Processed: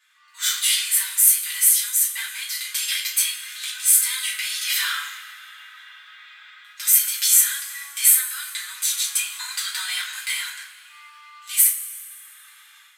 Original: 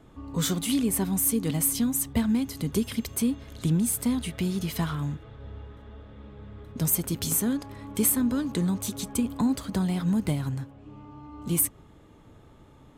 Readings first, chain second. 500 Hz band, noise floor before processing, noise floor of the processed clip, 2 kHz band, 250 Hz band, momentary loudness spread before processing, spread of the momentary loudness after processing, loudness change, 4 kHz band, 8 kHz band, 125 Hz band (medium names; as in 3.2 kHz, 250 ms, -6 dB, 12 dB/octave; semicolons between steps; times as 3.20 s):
under -35 dB, -53 dBFS, -50 dBFS, +14.5 dB, under -40 dB, 19 LU, 14 LU, +7.5 dB, +14.0 dB, +11.5 dB, under -40 dB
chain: steep high-pass 1.5 kHz 36 dB/octave; harmonic-percussive split harmonic +9 dB; level rider gain up to 12.5 dB; two-slope reverb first 0.3 s, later 2 s, from -18 dB, DRR -5.5 dB; trim -5.5 dB